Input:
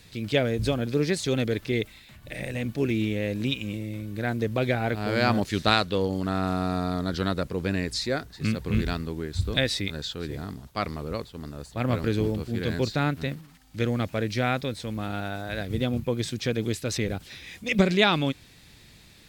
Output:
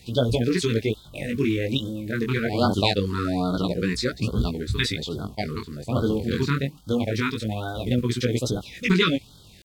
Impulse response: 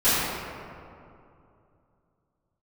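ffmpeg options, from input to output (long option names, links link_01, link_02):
-af "atempo=2,flanger=delay=16:depth=6.4:speed=0.24,afftfilt=real='re*(1-between(b*sr/1024,620*pow(2200/620,0.5+0.5*sin(2*PI*1.2*pts/sr))/1.41,620*pow(2200/620,0.5+0.5*sin(2*PI*1.2*pts/sr))*1.41))':imag='im*(1-between(b*sr/1024,620*pow(2200/620,0.5+0.5*sin(2*PI*1.2*pts/sr))/1.41,620*pow(2200/620,0.5+0.5*sin(2*PI*1.2*pts/sr))*1.41))':win_size=1024:overlap=0.75,volume=6.5dB"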